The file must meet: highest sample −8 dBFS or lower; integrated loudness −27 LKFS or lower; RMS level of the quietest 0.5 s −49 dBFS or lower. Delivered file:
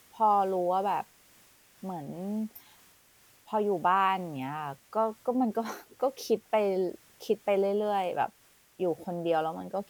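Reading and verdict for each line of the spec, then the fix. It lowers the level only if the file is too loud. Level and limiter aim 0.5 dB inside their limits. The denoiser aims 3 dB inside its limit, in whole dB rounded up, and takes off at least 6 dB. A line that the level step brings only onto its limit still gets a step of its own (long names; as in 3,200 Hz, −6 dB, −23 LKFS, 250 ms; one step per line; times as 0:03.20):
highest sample −14.0 dBFS: in spec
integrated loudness −30.0 LKFS: in spec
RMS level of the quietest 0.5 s −61 dBFS: in spec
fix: no processing needed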